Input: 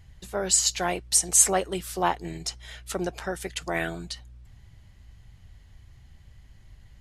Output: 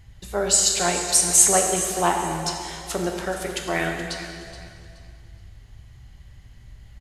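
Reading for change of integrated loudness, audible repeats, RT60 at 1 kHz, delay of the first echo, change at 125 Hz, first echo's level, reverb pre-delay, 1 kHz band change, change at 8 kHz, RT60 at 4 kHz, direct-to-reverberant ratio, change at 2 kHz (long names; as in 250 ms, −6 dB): +4.5 dB, 2, 2.4 s, 424 ms, +4.5 dB, −14.0 dB, 5 ms, +5.0 dB, +4.5 dB, 2.3 s, 1.5 dB, +5.0 dB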